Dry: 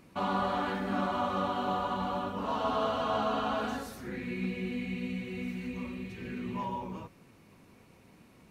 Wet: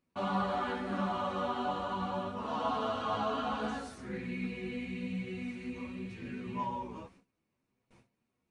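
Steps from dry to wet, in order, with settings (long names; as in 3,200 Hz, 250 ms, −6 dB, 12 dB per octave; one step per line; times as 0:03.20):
noise gate with hold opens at −45 dBFS
multi-voice chorus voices 4, 0.33 Hz, delay 12 ms, depth 3.9 ms
downsampling to 22,050 Hz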